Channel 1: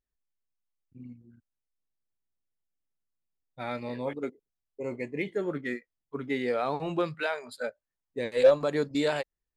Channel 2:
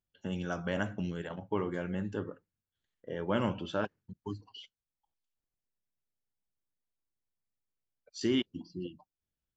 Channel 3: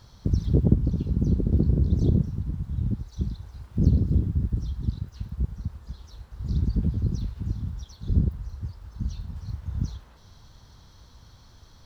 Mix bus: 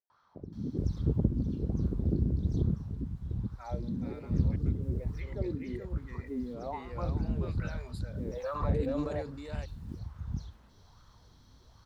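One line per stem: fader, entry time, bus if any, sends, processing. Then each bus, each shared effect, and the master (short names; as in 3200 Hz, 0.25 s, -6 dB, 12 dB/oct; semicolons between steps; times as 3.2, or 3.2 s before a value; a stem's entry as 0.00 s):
-2.5 dB, 0.00 s, bus A, no send, echo send -16 dB, notch 3300 Hz; sustainer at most 21 dB/s
off
+1.0 dB, 0.10 s, bus A, no send, echo send -9 dB, dry
bus A: 0.0 dB, wah 1.2 Hz 220–1300 Hz, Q 4; limiter -28 dBFS, peak gain reduction 10.5 dB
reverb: off
echo: echo 0.427 s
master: Doppler distortion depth 0.26 ms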